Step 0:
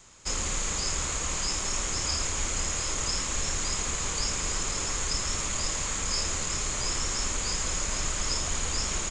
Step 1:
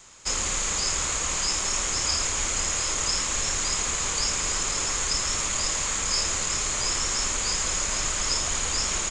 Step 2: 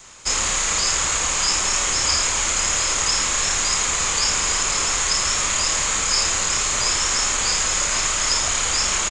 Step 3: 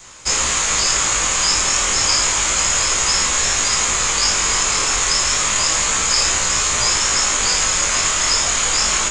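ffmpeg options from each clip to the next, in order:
-af "lowshelf=f=390:g=-6.5,volume=1.68"
-filter_complex "[0:a]acrossover=split=580|5000[s0][s1][s2];[s0]alimiter=level_in=2.51:limit=0.0631:level=0:latency=1:release=49,volume=0.398[s3];[s1]asplit=2[s4][s5];[s5]adelay=35,volume=0.794[s6];[s4][s6]amix=inputs=2:normalize=0[s7];[s3][s7][s2]amix=inputs=3:normalize=0,volume=1.88"
-af "flanger=delay=16:depth=6.4:speed=0.31,volume=2.11"

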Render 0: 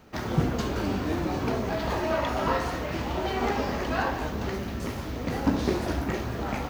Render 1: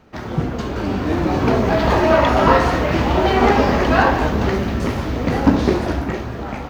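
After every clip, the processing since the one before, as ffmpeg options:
-af "lowpass=f=3600:p=1,dynaudnorm=f=250:g=9:m=3.55,volume=1.41"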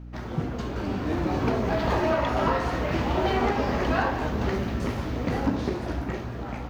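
-af "alimiter=limit=0.501:level=0:latency=1:release=447,aeval=exprs='val(0)+0.0282*(sin(2*PI*60*n/s)+sin(2*PI*2*60*n/s)/2+sin(2*PI*3*60*n/s)/3+sin(2*PI*4*60*n/s)/4+sin(2*PI*5*60*n/s)/5)':c=same,volume=0.398"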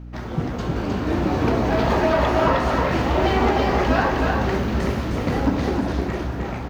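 -af "aecho=1:1:311:0.668,volume=1.58"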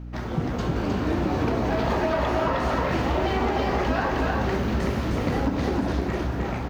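-af "acompressor=threshold=0.1:ratio=6"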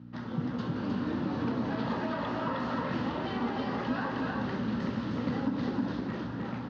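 -af "highpass=f=110:w=0.5412,highpass=f=110:w=1.3066,equalizer=f=240:t=q:w=4:g=6,equalizer=f=380:t=q:w=4:g=-7,equalizer=f=690:t=q:w=4:g=-9,equalizer=f=2300:t=q:w=4:g=-8,lowpass=f=4800:w=0.5412,lowpass=f=4800:w=1.3066,volume=0.473"

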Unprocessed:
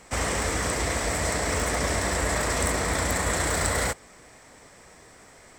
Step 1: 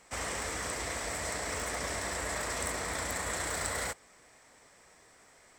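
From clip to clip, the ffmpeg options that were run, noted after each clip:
-af "lowshelf=f=400:g=-7,volume=0.422"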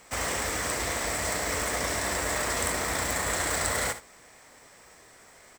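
-filter_complex "[0:a]acrusher=bits=2:mode=log:mix=0:aa=0.000001,asplit=2[s0][s1];[s1]aecho=0:1:58|75:0.224|0.158[s2];[s0][s2]amix=inputs=2:normalize=0,volume=1.88"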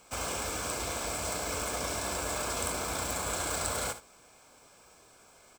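-af "asuperstop=centerf=1900:order=4:qfactor=4.2,volume=0.631"

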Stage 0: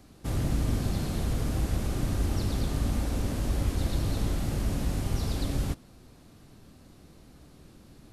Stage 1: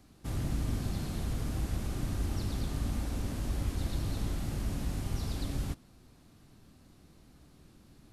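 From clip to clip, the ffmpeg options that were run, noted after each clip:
-af "equalizer=f=510:w=1.8:g=-3.5,volume=0.562"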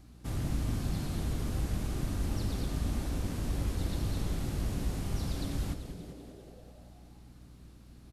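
-filter_complex "[0:a]asplit=2[s0][s1];[s1]asplit=8[s2][s3][s4][s5][s6][s7][s8][s9];[s2]adelay=194,afreqshift=-110,volume=0.299[s10];[s3]adelay=388,afreqshift=-220,volume=0.188[s11];[s4]adelay=582,afreqshift=-330,volume=0.119[s12];[s5]adelay=776,afreqshift=-440,volume=0.075[s13];[s6]adelay=970,afreqshift=-550,volume=0.0468[s14];[s7]adelay=1164,afreqshift=-660,volume=0.0295[s15];[s8]adelay=1358,afreqshift=-770,volume=0.0186[s16];[s9]adelay=1552,afreqshift=-880,volume=0.0117[s17];[s10][s11][s12][s13][s14][s15][s16][s17]amix=inputs=8:normalize=0[s18];[s0][s18]amix=inputs=2:normalize=0,aeval=exprs='val(0)+0.00224*(sin(2*PI*60*n/s)+sin(2*PI*2*60*n/s)/2+sin(2*PI*3*60*n/s)/3+sin(2*PI*4*60*n/s)/4+sin(2*PI*5*60*n/s)/5)':c=same"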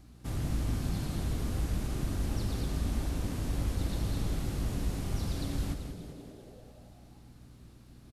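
-af "aecho=1:1:158:0.316"

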